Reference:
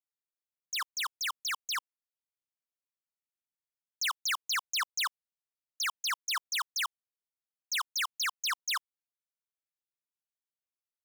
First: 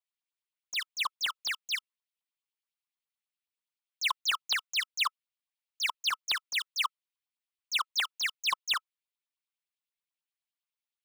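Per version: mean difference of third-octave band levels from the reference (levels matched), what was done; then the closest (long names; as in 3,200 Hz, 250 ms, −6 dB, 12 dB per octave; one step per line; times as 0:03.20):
5.0 dB: graphic EQ with 15 bands 1,600 Hz −8 dB, 6,300 Hz −6 dB, 16,000 Hz −11 dB
auto-filter high-pass saw up 9.5 Hz 970–3,500 Hz
notch filter 1,300 Hz, Q 24
level +2 dB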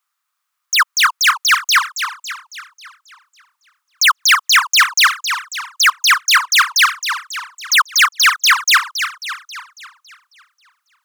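3.5 dB: high-pass with resonance 1,200 Hz, resonance Q 5.1
boost into a limiter +22.5 dB
feedback echo with a swinging delay time 273 ms, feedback 51%, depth 181 cents, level −9 dB
level −4.5 dB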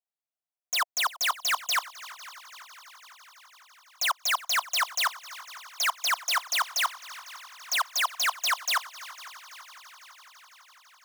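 8.0 dB: leveller curve on the samples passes 5
high-pass with resonance 690 Hz, resonance Q 4.9
on a send: echo machine with several playback heads 167 ms, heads second and third, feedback 69%, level −19.5 dB
on the sum: level +3.5 dB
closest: second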